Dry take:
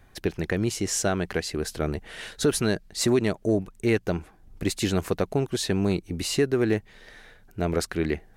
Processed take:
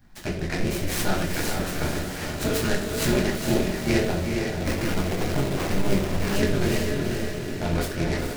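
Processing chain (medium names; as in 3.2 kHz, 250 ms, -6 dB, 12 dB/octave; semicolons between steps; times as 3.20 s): dynamic bell 2.3 kHz, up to +6 dB, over -46 dBFS, Q 1.3; AM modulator 200 Hz, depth 100%; treble shelf 12 kHz +10 dB; echo that smears into a reverb 453 ms, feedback 56%, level -3.5 dB; reverberation RT60 0.45 s, pre-delay 8 ms, DRR -4.5 dB; 4.65–6.36 s: sample-rate reducer 4.5 kHz; delay time shaken by noise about 2.6 kHz, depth 0.048 ms; trim -5.5 dB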